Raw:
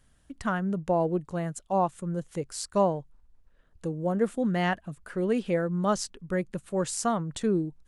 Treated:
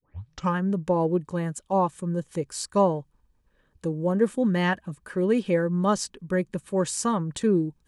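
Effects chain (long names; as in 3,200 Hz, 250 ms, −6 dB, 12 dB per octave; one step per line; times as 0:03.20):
turntable start at the beginning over 0.56 s
notch comb filter 690 Hz
level +4 dB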